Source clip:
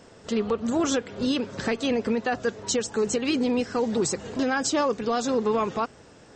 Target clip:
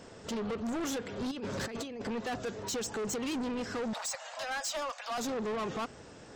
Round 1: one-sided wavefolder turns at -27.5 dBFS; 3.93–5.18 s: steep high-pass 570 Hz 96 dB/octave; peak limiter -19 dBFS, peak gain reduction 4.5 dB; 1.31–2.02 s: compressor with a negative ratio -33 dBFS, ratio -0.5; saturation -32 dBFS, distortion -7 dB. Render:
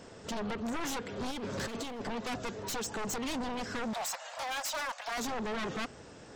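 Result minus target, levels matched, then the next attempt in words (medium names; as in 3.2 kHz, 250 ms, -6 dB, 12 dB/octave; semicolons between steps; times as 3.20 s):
one-sided wavefolder: distortion +26 dB
one-sided wavefolder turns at -17.5 dBFS; 3.93–5.18 s: steep high-pass 570 Hz 96 dB/octave; peak limiter -19 dBFS, peak gain reduction 5.5 dB; 1.31–2.02 s: compressor with a negative ratio -33 dBFS, ratio -0.5; saturation -32 dBFS, distortion -7 dB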